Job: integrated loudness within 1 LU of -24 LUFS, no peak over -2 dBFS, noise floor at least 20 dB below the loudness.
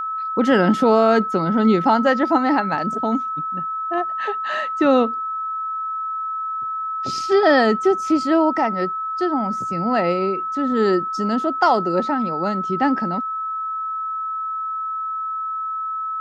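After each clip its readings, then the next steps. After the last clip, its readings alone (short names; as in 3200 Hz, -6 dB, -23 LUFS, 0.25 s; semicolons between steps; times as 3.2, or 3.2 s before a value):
steady tone 1300 Hz; tone level -23 dBFS; loudness -20.0 LUFS; peak -4.0 dBFS; loudness target -24.0 LUFS
-> notch 1300 Hz, Q 30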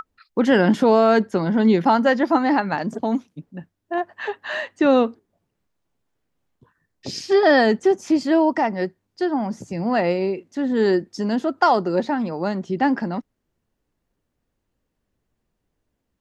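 steady tone none; loudness -20.5 LUFS; peak -4.5 dBFS; loudness target -24.0 LUFS
-> gain -3.5 dB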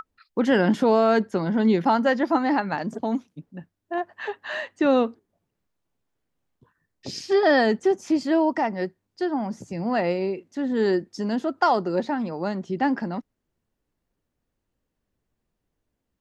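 loudness -24.0 LUFS; peak -8.0 dBFS; noise floor -80 dBFS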